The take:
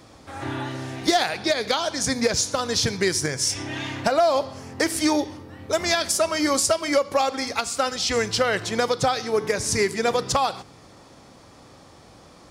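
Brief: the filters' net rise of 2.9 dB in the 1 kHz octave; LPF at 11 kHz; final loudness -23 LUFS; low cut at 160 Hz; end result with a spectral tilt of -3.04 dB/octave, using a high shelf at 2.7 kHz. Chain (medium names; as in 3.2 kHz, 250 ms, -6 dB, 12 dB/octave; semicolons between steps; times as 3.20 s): high-pass 160 Hz; low-pass 11 kHz; peaking EQ 1 kHz +5 dB; treble shelf 2.7 kHz -5.5 dB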